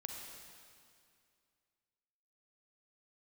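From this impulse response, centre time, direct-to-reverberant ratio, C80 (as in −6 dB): 89 ms, 1.0 dB, 3.0 dB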